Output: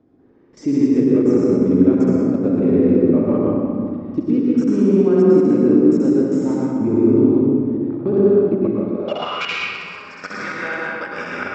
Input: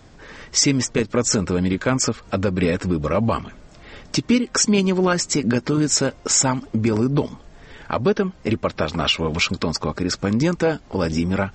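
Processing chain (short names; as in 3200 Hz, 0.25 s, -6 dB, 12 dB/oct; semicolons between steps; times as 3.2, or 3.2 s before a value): flutter echo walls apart 11 m, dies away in 1.4 s; level quantiser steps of 18 dB; reverb RT60 2.2 s, pre-delay 99 ms, DRR -4.5 dB; band-pass sweep 300 Hz -> 1700 Hz, 8.91–9.49; gain +5 dB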